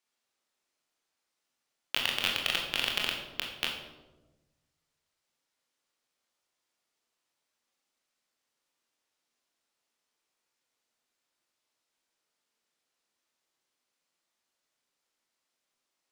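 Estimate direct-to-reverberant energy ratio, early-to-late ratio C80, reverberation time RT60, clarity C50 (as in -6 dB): -0.5 dB, 6.5 dB, 1.1 s, 4.0 dB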